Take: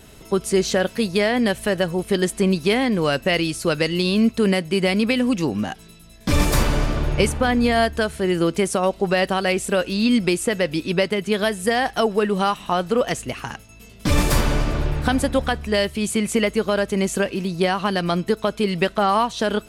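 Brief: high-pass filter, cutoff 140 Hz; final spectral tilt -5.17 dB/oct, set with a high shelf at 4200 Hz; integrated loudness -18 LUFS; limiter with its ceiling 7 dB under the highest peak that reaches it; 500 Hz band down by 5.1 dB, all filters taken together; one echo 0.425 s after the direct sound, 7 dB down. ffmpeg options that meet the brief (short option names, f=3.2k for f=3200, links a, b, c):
-af "highpass=140,equalizer=f=500:t=o:g=-6.5,highshelf=f=4.2k:g=-8,alimiter=limit=-15dB:level=0:latency=1,aecho=1:1:425:0.447,volume=7dB"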